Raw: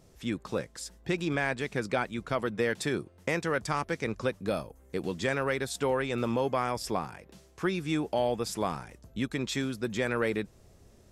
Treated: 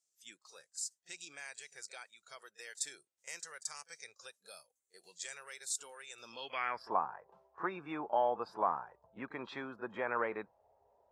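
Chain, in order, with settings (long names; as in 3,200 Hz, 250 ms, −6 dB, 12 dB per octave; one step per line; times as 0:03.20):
band-pass filter sweep 7,400 Hz → 960 Hz, 0:06.17–0:06.92
echo ahead of the sound 35 ms −16.5 dB
noise reduction from a noise print of the clip's start 14 dB
level +4 dB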